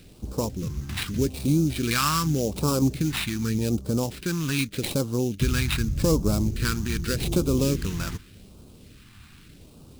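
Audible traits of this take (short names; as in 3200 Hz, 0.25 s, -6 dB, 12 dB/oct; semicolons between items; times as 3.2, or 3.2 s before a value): aliases and images of a low sample rate 6400 Hz, jitter 20%; phasing stages 2, 0.84 Hz, lowest notch 480–1800 Hz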